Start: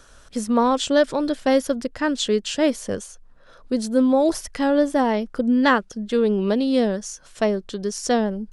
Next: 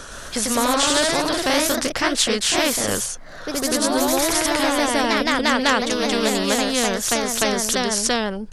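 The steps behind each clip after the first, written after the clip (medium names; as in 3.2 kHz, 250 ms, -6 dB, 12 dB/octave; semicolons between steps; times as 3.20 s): hum notches 60/120 Hz; ever faster or slower copies 116 ms, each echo +1 st, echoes 3; spectrum-flattening compressor 2:1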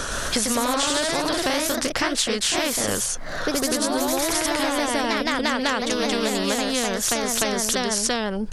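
compression 6:1, threshold -29 dBFS, peak gain reduction 14.5 dB; trim +8.5 dB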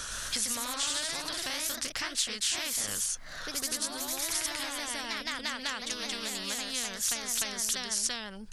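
amplifier tone stack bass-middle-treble 5-5-5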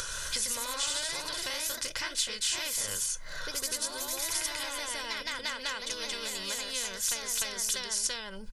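comb 2 ms, depth 55%; upward compressor, threshold -33 dBFS; on a send at -14.5 dB: reverberation, pre-delay 4 ms; on the sum: trim -1.5 dB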